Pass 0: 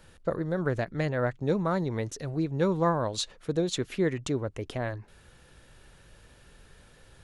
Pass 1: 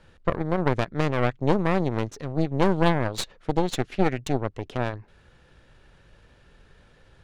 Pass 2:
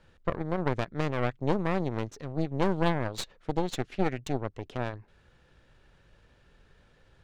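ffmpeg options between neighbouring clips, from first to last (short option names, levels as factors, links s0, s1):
-af "aeval=exprs='0.211*(cos(1*acos(clip(val(0)/0.211,-1,1)))-cos(1*PI/2))+0.0188*(cos(3*acos(clip(val(0)/0.211,-1,1)))-cos(3*PI/2))+0.075*(cos(4*acos(clip(val(0)/0.211,-1,1)))-cos(4*PI/2))':c=same,adynamicsmooth=sensitivity=6.5:basefreq=5300,volume=1.41"
-af "equalizer=f=10000:w=7.1:g=-5.5,volume=0.531"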